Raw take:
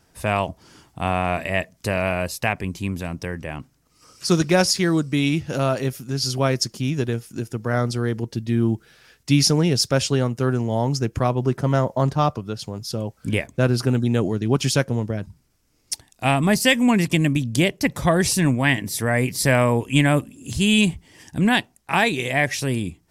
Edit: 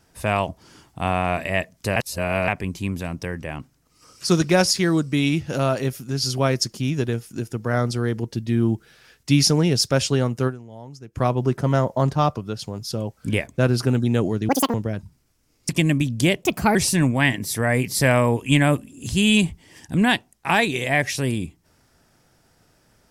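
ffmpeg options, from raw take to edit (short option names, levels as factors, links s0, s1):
-filter_complex "[0:a]asplit=10[s0][s1][s2][s3][s4][s5][s6][s7][s8][s9];[s0]atrim=end=1.962[s10];[s1]atrim=start=1.958:end=2.482,asetpts=PTS-STARTPTS,areverse[s11];[s2]atrim=start=2.478:end=10.81,asetpts=PTS-STARTPTS,afade=t=out:st=7.992:d=0.34:c=exp:silence=0.125893[s12];[s3]atrim=start=10.81:end=10.86,asetpts=PTS-STARTPTS,volume=0.126[s13];[s4]atrim=start=10.86:end=14.494,asetpts=PTS-STARTPTS,afade=t=in:d=0.34:c=exp:silence=0.125893[s14];[s5]atrim=start=14.49:end=14.98,asetpts=PTS-STARTPTS,asetrate=86877,aresample=44100,atrim=end_sample=10969,asetpts=PTS-STARTPTS[s15];[s6]atrim=start=14.976:end=15.932[s16];[s7]atrim=start=17.038:end=17.784[s17];[s8]atrim=start=17.78:end=18.19,asetpts=PTS-STARTPTS,asetrate=56007,aresample=44100,atrim=end_sample=14237,asetpts=PTS-STARTPTS[s18];[s9]atrim=start=18.186[s19];[s10][s11]acrossfade=d=0.004:c1=hsin:c2=hsin[s20];[s12][s13][s14]concat=n=3:v=0:a=1[s21];[s20][s21]acrossfade=d=0.004:c1=hsin:c2=hsin[s22];[s22][s15]acrossfade=d=0.004:c1=hsin:c2=hsin[s23];[s23][s16]acrossfade=d=0.004:c1=hsin:c2=hsin[s24];[s24][s17]acrossfade=d=0.004:c1=hsin:c2=hsin[s25];[s25][s18]acrossfade=d=0.004:c1=hsin:c2=hsin[s26];[s26][s19]acrossfade=d=0.004:c1=hsin:c2=hsin"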